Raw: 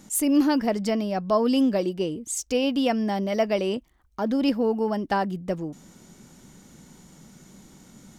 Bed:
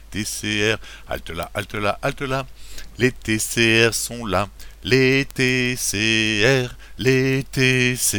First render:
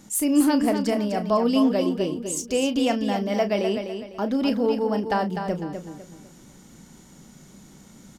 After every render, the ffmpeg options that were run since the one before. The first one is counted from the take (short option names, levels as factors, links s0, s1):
-filter_complex "[0:a]asplit=2[s0][s1];[s1]adelay=34,volume=0.282[s2];[s0][s2]amix=inputs=2:normalize=0,asplit=2[s3][s4];[s4]aecho=0:1:251|502|753|1004:0.422|0.143|0.0487|0.0166[s5];[s3][s5]amix=inputs=2:normalize=0"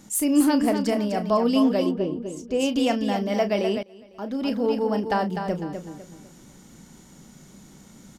-filter_complex "[0:a]asplit=3[s0][s1][s2];[s0]afade=t=out:st=1.9:d=0.02[s3];[s1]lowpass=f=1100:p=1,afade=t=in:st=1.9:d=0.02,afade=t=out:st=2.59:d=0.02[s4];[s2]afade=t=in:st=2.59:d=0.02[s5];[s3][s4][s5]amix=inputs=3:normalize=0,asplit=2[s6][s7];[s6]atrim=end=3.83,asetpts=PTS-STARTPTS,afade=t=out:st=3.826:d=0.004:c=hsin:silence=0.0668344[s8];[s7]atrim=start=3.83,asetpts=PTS-STARTPTS,afade=t=in:d=0.95:silence=0.0668344[s9];[s8][s9]concat=n=2:v=0:a=1"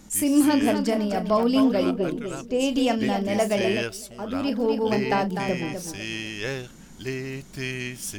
-filter_complex "[1:a]volume=0.2[s0];[0:a][s0]amix=inputs=2:normalize=0"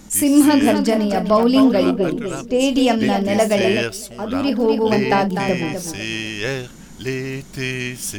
-af "volume=2.11"